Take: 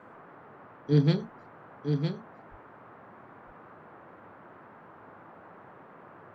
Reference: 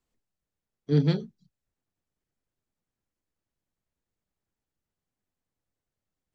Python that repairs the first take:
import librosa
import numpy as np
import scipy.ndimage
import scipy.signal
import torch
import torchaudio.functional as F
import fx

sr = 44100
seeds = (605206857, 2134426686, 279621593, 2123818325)

y = fx.fix_deplosive(x, sr, at_s=(2.5,))
y = fx.noise_reduce(y, sr, print_start_s=4.53, print_end_s=5.03, reduce_db=30.0)
y = fx.fix_echo_inverse(y, sr, delay_ms=958, level_db=-6.0)